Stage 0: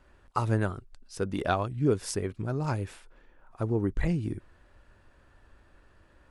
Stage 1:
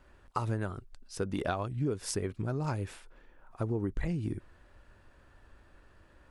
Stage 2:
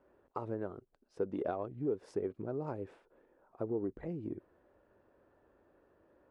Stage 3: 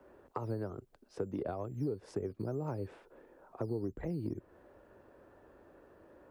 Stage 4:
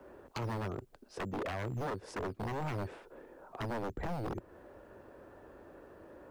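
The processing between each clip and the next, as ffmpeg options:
-af "acompressor=threshold=-28dB:ratio=6"
-filter_complex "[0:a]asplit=2[a][b];[b]aeval=exprs='clip(val(0),-1,0.0237)':c=same,volume=-10.5dB[c];[a][c]amix=inputs=2:normalize=0,bandpass=f=450:t=q:w=1.4:csg=0,volume=-1dB"
-filter_complex "[0:a]acrossover=split=140[a][b];[b]acompressor=threshold=-47dB:ratio=3[c];[a][c]amix=inputs=2:normalize=0,acrossover=split=150[d][e];[d]acrusher=samples=8:mix=1:aa=0.000001:lfo=1:lforange=4.8:lforate=2.2[f];[f][e]amix=inputs=2:normalize=0,volume=8.5dB"
-af "aeval=exprs='0.0141*(abs(mod(val(0)/0.0141+3,4)-2)-1)':c=same,volume=5.5dB"

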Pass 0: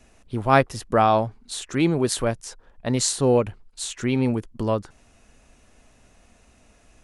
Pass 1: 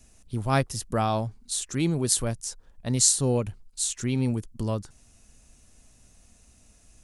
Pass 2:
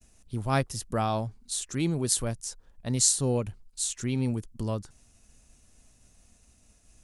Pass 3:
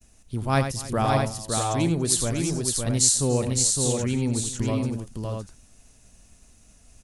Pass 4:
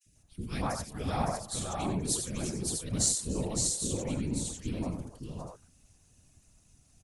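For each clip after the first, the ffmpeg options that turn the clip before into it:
-af "bass=f=250:g=9,treble=f=4k:g=15,volume=-9dB"
-af "agate=range=-33dB:threshold=-54dB:ratio=3:detection=peak,volume=-2.5dB"
-af "aecho=1:1:89|286|561|641:0.376|0.112|0.631|0.501,volume=3dB"
-filter_complex "[0:a]afftfilt=real='hypot(re,im)*cos(2*PI*random(0))':imag='hypot(re,im)*sin(2*PI*random(1))':win_size=512:overlap=0.75,aeval=exprs='0.251*(cos(1*acos(clip(val(0)/0.251,-1,1)))-cos(1*PI/2))+0.0355*(cos(3*acos(clip(val(0)/0.251,-1,1)))-cos(3*PI/2))+0.0112*(cos(5*acos(clip(val(0)/0.251,-1,1)))-cos(5*PI/2))':c=same,acrossover=split=490|1800[a][b][c];[a]adelay=50[d];[b]adelay=140[e];[d][e][c]amix=inputs=3:normalize=0"

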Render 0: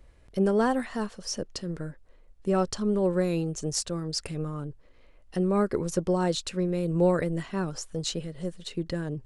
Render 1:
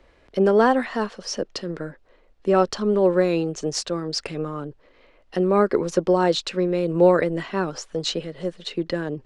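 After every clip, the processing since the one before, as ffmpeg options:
-filter_complex "[0:a]acrossover=split=240 5500:gain=0.224 1 0.126[a][b][c];[a][b][c]amix=inputs=3:normalize=0,volume=8.5dB"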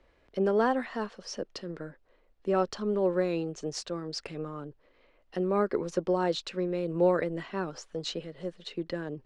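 -af "highshelf=f=8.3k:g=-6,volume=-8.5dB"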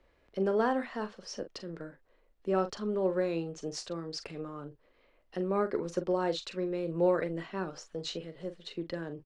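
-filter_complex "[0:a]asplit=2[a][b];[b]adelay=42,volume=-11dB[c];[a][c]amix=inputs=2:normalize=0,volume=-3dB"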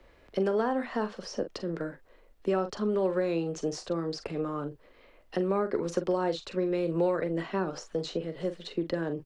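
-filter_complex "[0:a]acrossover=split=160|1200[a][b][c];[a]acompressor=threshold=-56dB:ratio=4[d];[b]acompressor=threshold=-35dB:ratio=4[e];[c]acompressor=threshold=-51dB:ratio=4[f];[d][e][f]amix=inputs=3:normalize=0,volume=9dB"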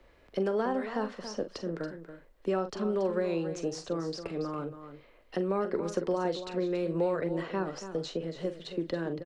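-af "aecho=1:1:280:0.282,volume=-2dB"

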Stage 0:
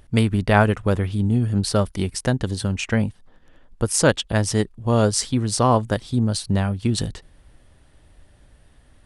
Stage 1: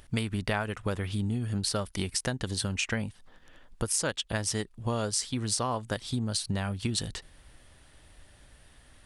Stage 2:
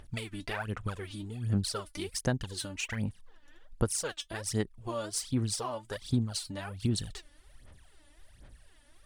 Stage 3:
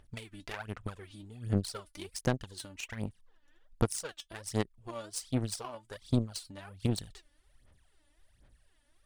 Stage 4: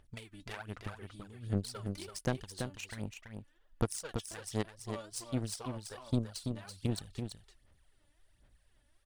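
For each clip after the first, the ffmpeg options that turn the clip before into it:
-af "tiltshelf=f=970:g=-4.5,acompressor=threshold=-27dB:ratio=6"
-af "aphaser=in_gain=1:out_gain=1:delay=3.5:decay=0.75:speed=1.3:type=sinusoidal,volume=-8.5dB"
-af "aeval=exprs='0.211*(cos(1*acos(clip(val(0)/0.211,-1,1)))-cos(1*PI/2))+0.0211*(cos(7*acos(clip(val(0)/0.211,-1,1)))-cos(7*PI/2))':c=same,volume=1dB"
-af "aecho=1:1:333:0.501,volume=-3.5dB"

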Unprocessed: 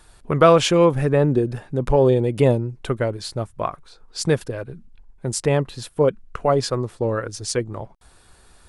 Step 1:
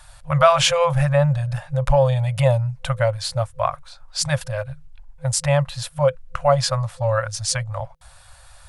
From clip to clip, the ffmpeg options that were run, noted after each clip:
-filter_complex "[0:a]asplit=2[a][b];[b]alimiter=limit=-13.5dB:level=0:latency=1:release=29,volume=0dB[c];[a][c]amix=inputs=2:normalize=0,afftfilt=real='re*(1-between(b*sr/4096,160,510))':imag='im*(1-between(b*sr/4096,160,510))':win_size=4096:overlap=0.75,volume=-1dB"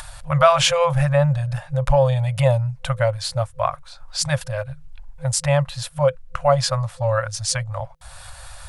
-af "acompressor=mode=upward:threshold=-28dB:ratio=2.5"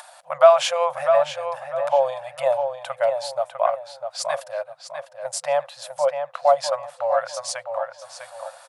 -filter_complex "[0:a]highpass=f=670:t=q:w=3.6,asplit=2[a][b];[b]adelay=651,lowpass=f=3.6k:p=1,volume=-6.5dB,asplit=2[c][d];[d]adelay=651,lowpass=f=3.6k:p=1,volume=0.31,asplit=2[e][f];[f]adelay=651,lowpass=f=3.6k:p=1,volume=0.31,asplit=2[g][h];[h]adelay=651,lowpass=f=3.6k:p=1,volume=0.31[i];[c][e][g][i]amix=inputs=4:normalize=0[j];[a][j]amix=inputs=2:normalize=0,volume=-7dB"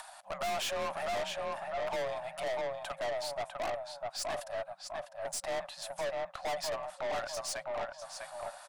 -af "afreqshift=37,aeval=exprs='(tanh(28.2*val(0)+0.25)-tanh(0.25))/28.2':c=same,volume=-3.5dB"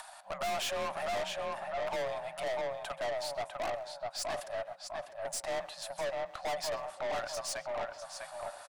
-filter_complex "[0:a]asplit=2[a][b];[b]adelay=130,highpass=300,lowpass=3.4k,asoftclip=type=hard:threshold=-39.5dB,volume=-12dB[c];[a][c]amix=inputs=2:normalize=0"

